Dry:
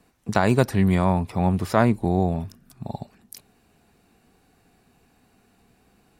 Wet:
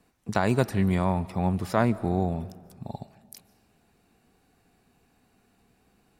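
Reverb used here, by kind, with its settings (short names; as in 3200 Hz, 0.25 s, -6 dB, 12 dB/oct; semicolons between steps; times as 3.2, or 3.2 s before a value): digital reverb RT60 1.6 s, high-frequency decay 0.65×, pre-delay 0.105 s, DRR 19 dB; gain -4.5 dB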